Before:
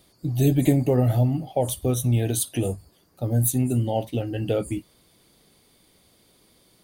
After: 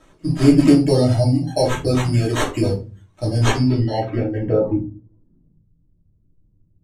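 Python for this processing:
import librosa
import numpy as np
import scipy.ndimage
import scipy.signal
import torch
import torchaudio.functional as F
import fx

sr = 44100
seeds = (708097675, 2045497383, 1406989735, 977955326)

y = fx.sample_hold(x, sr, seeds[0], rate_hz=4900.0, jitter_pct=0)
y = fx.filter_sweep_lowpass(y, sr, from_hz=8600.0, to_hz=110.0, start_s=3.36, end_s=5.72, q=1.2)
y = fx.dereverb_blind(y, sr, rt60_s=0.75)
y = fx.room_shoebox(y, sr, seeds[1], volume_m3=140.0, walls='furnished', distance_m=2.8)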